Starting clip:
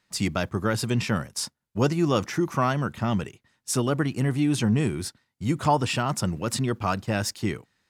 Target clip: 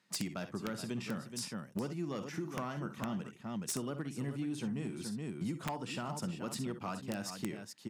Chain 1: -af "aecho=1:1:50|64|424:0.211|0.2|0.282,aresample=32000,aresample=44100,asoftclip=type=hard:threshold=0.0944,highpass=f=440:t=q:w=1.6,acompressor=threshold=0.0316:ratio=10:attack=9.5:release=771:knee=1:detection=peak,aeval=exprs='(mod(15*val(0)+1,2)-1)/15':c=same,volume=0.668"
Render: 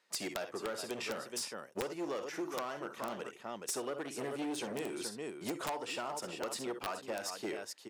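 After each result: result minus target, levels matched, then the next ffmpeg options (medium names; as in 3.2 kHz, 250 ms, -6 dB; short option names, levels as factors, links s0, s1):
hard clipper: distortion +12 dB; 500 Hz band +5.0 dB
-af "aecho=1:1:50|64|424:0.211|0.2|0.282,aresample=32000,aresample=44100,asoftclip=type=hard:threshold=0.188,highpass=f=440:t=q:w=1.6,acompressor=threshold=0.0316:ratio=10:attack=9.5:release=771:knee=1:detection=peak,aeval=exprs='(mod(15*val(0)+1,2)-1)/15':c=same,volume=0.668"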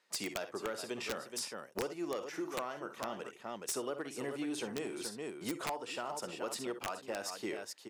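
500 Hz band +4.5 dB
-af "aecho=1:1:50|64|424:0.211|0.2|0.282,aresample=32000,aresample=44100,asoftclip=type=hard:threshold=0.188,highpass=f=180:t=q:w=1.6,acompressor=threshold=0.0316:ratio=10:attack=9.5:release=771:knee=1:detection=peak,aeval=exprs='(mod(15*val(0)+1,2)-1)/15':c=same,volume=0.668"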